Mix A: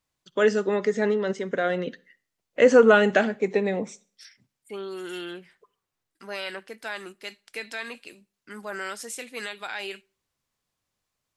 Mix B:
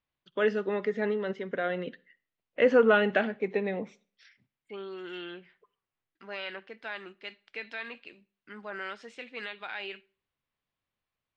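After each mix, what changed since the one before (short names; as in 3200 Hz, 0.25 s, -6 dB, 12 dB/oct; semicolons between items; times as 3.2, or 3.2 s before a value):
second voice: send +6.0 dB; master: add ladder low-pass 4000 Hz, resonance 25%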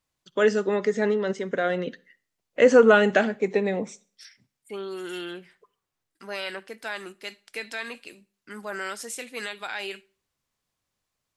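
master: remove ladder low-pass 4000 Hz, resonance 25%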